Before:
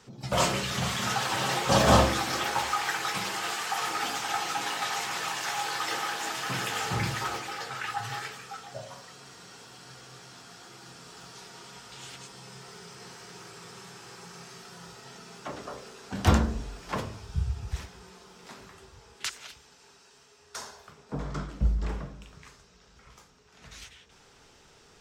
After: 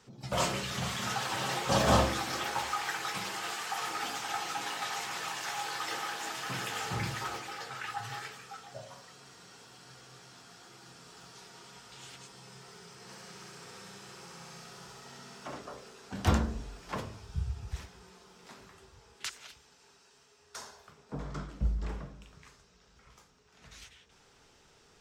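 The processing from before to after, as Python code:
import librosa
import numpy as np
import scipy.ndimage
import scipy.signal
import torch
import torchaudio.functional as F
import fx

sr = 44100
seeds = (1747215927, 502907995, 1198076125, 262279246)

y = fx.room_flutter(x, sr, wall_m=11.4, rt60_s=1.2, at=(13.07, 15.56), fade=0.02)
y = F.gain(torch.from_numpy(y), -5.0).numpy()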